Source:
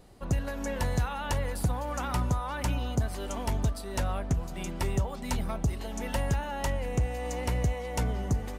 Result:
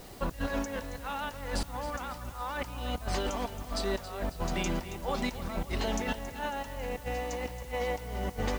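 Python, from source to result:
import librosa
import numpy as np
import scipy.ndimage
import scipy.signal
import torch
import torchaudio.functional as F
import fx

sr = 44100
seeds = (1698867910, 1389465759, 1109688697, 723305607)

y = scipy.signal.sosfilt(scipy.signal.butter(4, 6800.0, 'lowpass', fs=sr, output='sos'), x)
y = fx.low_shelf(y, sr, hz=300.0, db=-6.0)
y = fx.over_compress(y, sr, threshold_db=-39.0, ratio=-0.5)
y = fx.quant_dither(y, sr, seeds[0], bits=10, dither='triangular')
y = fx.echo_feedback(y, sr, ms=274, feedback_pct=53, wet_db=-13.5)
y = y * librosa.db_to_amplitude(5.0)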